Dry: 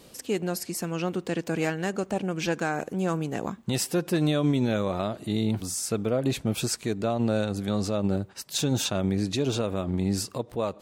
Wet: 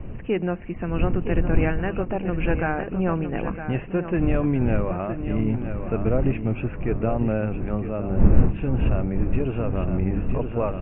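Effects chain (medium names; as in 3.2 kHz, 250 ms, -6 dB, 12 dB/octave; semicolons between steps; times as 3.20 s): wind noise 190 Hz -30 dBFS; steep low-pass 2.8 kHz 96 dB/octave; bass shelf 65 Hz +12 dB; hum notches 50/100/150/200 Hz; feedback delay 961 ms, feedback 34%, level -9 dB; gain riding within 4 dB 2 s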